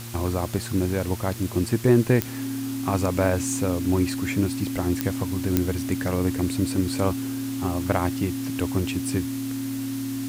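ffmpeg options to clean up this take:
-af "adeclick=t=4,bandreject=f=116.6:t=h:w=4,bandreject=f=233.2:t=h:w=4,bandreject=f=349.8:t=h:w=4,bandreject=f=270:w=30,afwtdn=0.01"

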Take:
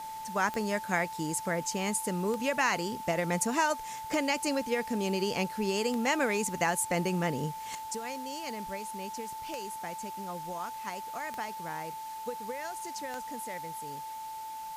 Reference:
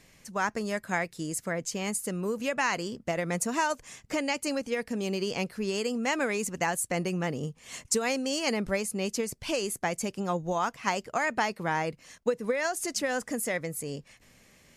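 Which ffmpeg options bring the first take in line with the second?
-af "adeclick=t=4,bandreject=f=880:w=30,afwtdn=0.0028,asetnsamples=n=441:p=0,asendcmd='7.75 volume volume 11.5dB',volume=0dB"

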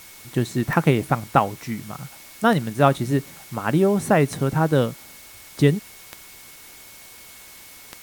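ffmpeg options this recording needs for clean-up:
-af "adeclick=t=4,bandreject=f=2.2k:w=30,afftdn=nr=21:nf=-44"

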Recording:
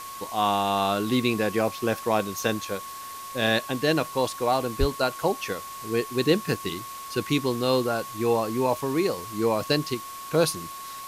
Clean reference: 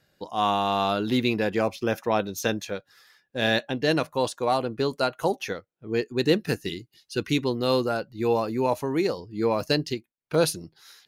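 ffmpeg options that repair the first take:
-filter_complex "[0:a]bandreject=f=1.1k:w=30,asplit=3[a][b][c];[a]afade=t=out:st=4.79:d=0.02[d];[b]highpass=f=140:w=0.5412,highpass=f=140:w=1.3066,afade=t=in:st=4.79:d=0.02,afade=t=out:st=4.91:d=0.02[e];[c]afade=t=in:st=4.91:d=0.02[f];[d][e][f]amix=inputs=3:normalize=0,afftdn=nr=25:nf=-38"

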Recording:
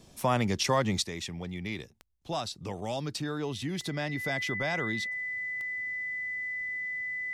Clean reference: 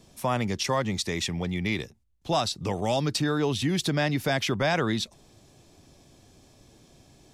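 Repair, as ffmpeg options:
-af "adeclick=t=4,bandreject=f=2k:w=30,asetnsamples=n=441:p=0,asendcmd='1.04 volume volume 8dB',volume=0dB"

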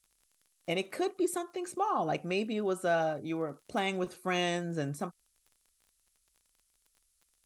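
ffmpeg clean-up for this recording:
-af "adeclick=t=4,agate=range=-21dB:threshold=-67dB"

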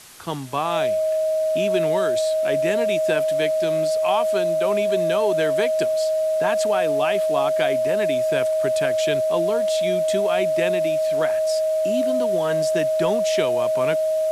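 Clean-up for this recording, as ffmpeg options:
-af "bandreject=f=630:w=30,afwtdn=0.0071"

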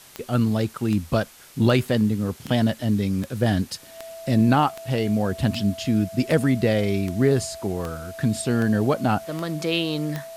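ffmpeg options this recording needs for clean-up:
-af "adeclick=t=4,bandreject=f=660:w=30,afwtdn=0.0045"

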